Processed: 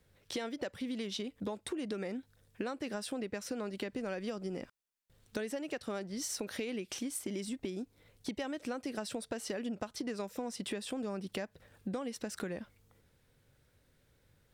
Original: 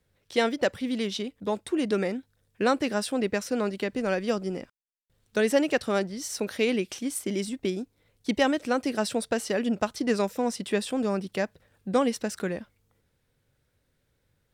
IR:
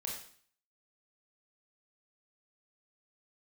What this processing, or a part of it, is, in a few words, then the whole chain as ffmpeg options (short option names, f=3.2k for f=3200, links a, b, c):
serial compression, peaks first: -af "acompressor=threshold=-34dB:ratio=4,acompressor=threshold=-40dB:ratio=2.5,volume=3dB"